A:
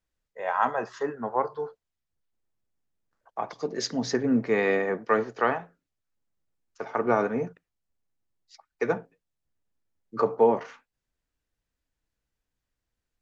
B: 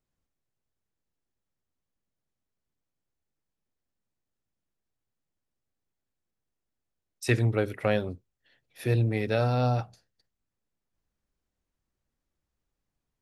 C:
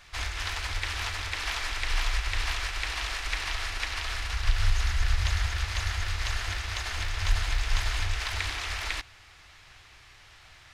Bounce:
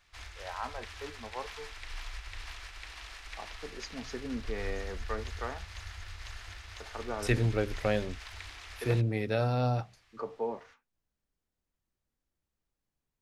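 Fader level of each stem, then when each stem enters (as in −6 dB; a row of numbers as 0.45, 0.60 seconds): −14.0, −3.5, −14.0 decibels; 0.00, 0.00, 0.00 seconds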